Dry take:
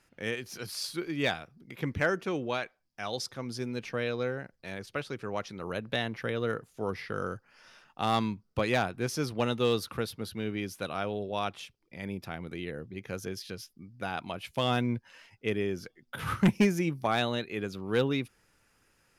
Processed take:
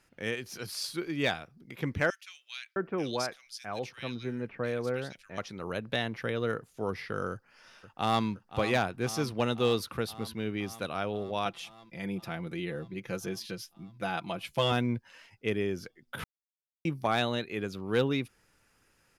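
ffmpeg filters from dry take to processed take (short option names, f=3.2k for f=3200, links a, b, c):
-filter_complex "[0:a]asettb=1/sr,asplit=3[a][b][c];[a]atrim=end=2.104[d];[b]atrim=start=2.1:end=5.38,asetpts=PTS-STARTPTS,afade=t=in:d=0.004:c=qsin,afade=t=out:st=3.276:d=0.004:c=qsin,acrossover=split=2100[e][f];[e]adelay=660[g];[g][f]amix=inputs=2:normalize=0,atrim=end_sample=144648[h];[c]atrim=start=5.376[i];[d][h]acrossfade=d=0.004:c1=hsin:c2=qsin[j];[j][i]acrossfade=d=0.004:c1=qsin:c2=hsin,asplit=2[k][l];[l]afade=t=in:st=7.31:d=0.01,afade=t=out:st=8.25:d=0.01,aecho=0:1:520|1040|1560|2080|2600|3120|3640|4160|4680|5200|5720|6240:0.237137|0.177853|0.13339|0.100042|0.0750317|0.0562738|0.0422054|0.031654|0.0237405|0.0178054|0.013354|0.0100155[m];[k][m]amix=inputs=2:normalize=0,asettb=1/sr,asplit=3[n][o][p];[n]atrim=end=11.454[q];[o]atrim=start=11.45:end=14.72,asetpts=PTS-STARTPTS,afade=t=in:d=0.004:c=qsin,afade=t=out:st=3.266:d=0.004:c=qsin,aecho=1:1:5.9:0.62,atrim=end_sample=144207[r];[p]atrim=start=14.716[s];[q][r]acrossfade=d=0.004:c1=hsin:c2=qsin[t];[t][s]acrossfade=d=0.004:c1=qsin:c2=hsin,asplit=3[u][v][w];[u]atrim=end=16.24,asetpts=PTS-STARTPTS,afade=t=out:st=16.236:d=0.004:c=hsin[x];[v]atrim=start=16.24:end=16.85,asetpts=PTS-STARTPTS,volume=0[y];[w]atrim=start=16.85,asetpts=PTS-STARTPTS,afade=t=in:d=0.004:c=hsin[z];[x][y][z]concat=n=3:v=0:a=1"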